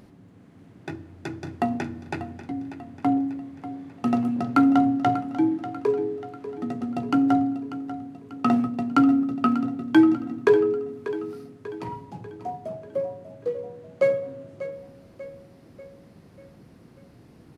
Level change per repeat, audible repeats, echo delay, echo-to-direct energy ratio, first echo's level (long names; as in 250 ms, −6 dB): −6.0 dB, 4, 591 ms, −11.5 dB, −13.0 dB